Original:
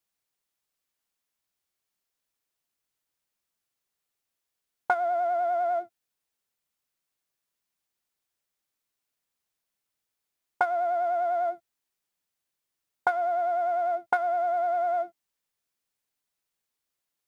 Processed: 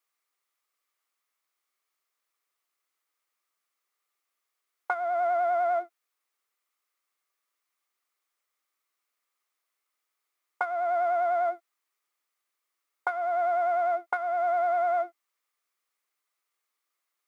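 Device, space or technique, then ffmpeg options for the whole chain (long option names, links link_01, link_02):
laptop speaker: -af "highpass=frequency=310:width=0.5412,highpass=frequency=310:width=1.3066,equalizer=frequency=1200:width_type=o:width=0.32:gain=12,equalizer=frequency=2100:width_type=o:width=0.36:gain=7,alimiter=limit=-14.5dB:level=0:latency=1:release=347"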